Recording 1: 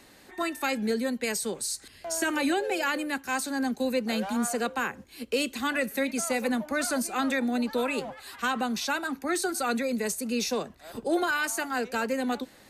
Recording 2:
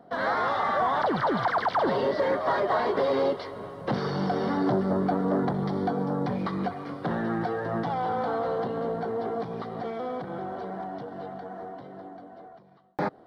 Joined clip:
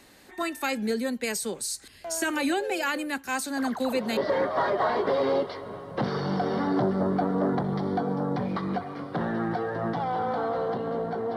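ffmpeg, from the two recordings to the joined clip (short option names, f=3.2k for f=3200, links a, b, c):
-filter_complex "[1:a]asplit=2[a][b];[0:a]apad=whole_dur=11.36,atrim=end=11.36,atrim=end=4.172[c];[b]atrim=start=2.068:end=9.26[d];[a]atrim=start=1.47:end=2.07,asetpts=PTS-STARTPTS,volume=-12.5dB,afade=t=in:d=0.004:c=hsin,afade=t=out:st=0.596:d=0.004:c=hsin,adelay=157437S[e];[c][d]acrossfade=d=0.004:c1=hsin:c2=hsin[f];[f][e]amix=inputs=2:normalize=0"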